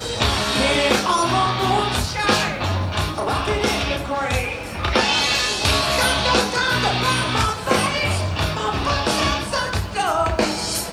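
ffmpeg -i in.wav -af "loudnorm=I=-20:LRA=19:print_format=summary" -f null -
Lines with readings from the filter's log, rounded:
Input Integrated:    -19.9 LUFS
Input True Peak:      -3.5 dBTP
Input LRA:             3.0 LU
Input Threshold:     -29.9 LUFS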